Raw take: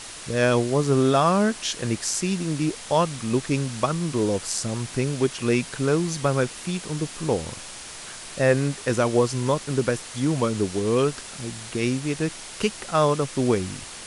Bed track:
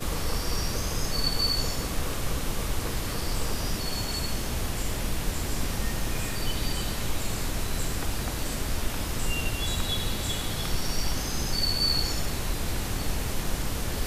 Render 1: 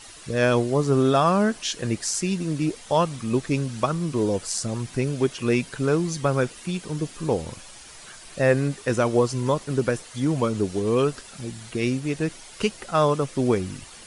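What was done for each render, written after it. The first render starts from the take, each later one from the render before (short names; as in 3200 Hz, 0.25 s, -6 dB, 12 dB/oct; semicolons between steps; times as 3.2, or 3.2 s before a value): denoiser 9 dB, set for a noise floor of -39 dBFS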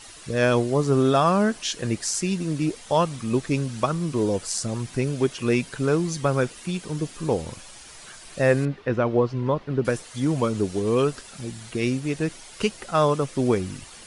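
8.65–9.85 air absorption 310 m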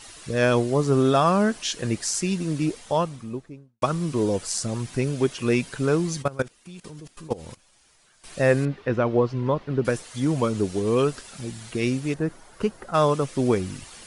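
2.63–3.82 studio fade out; 6.22–8.24 level quantiser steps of 20 dB; 12.14–12.94 band shelf 4600 Hz -12 dB 2.5 oct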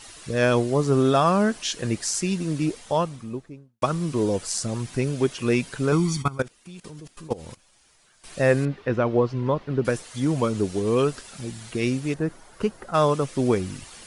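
5.92–6.38 comb 0.9 ms, depth 87%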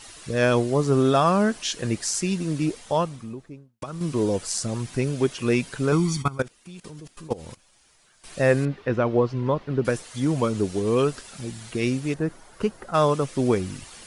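3.13–4.01 compressor, threshold -30 dBFS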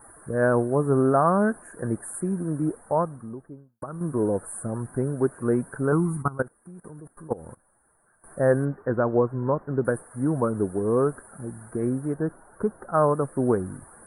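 Chebyshev band-stop 1600–9300 Hz, order 4; low shelf 64 Hz -6.5 dB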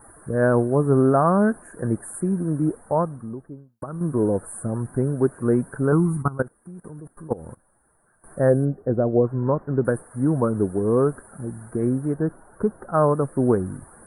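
8.49–9.25 spectral gain 780–4500 Hz -12 dB; low shelf 440 Hz +5 dB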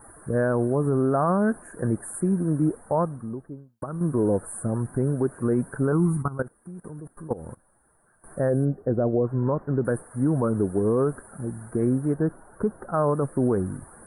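limiter -14 dBFS, peak gain reduction 7.5 dB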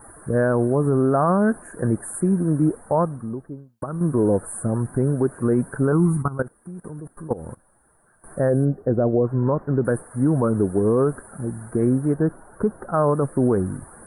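gain +3.5 dB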